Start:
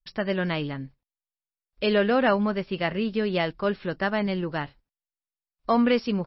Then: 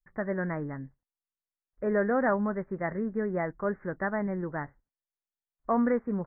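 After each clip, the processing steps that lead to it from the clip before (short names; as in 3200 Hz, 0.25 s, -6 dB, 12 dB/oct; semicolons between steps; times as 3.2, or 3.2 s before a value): steep low-pass 2000 Hz 96 dB/oct; gain -4.5 dB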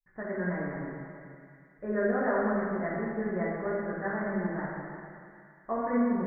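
thin delay 0.11 s, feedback 84%, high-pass 1900 Hz, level -11 dB; plate-style reverb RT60 2.2 s, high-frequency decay 0.95×, DRR -7.5 dB; gain -9 dB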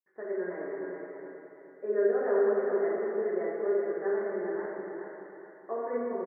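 resonant high-pass 400 Hz, resonance Q 4.9; feedback echo 0.422 s, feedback 34%, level -5.5 dB; gain -8 dB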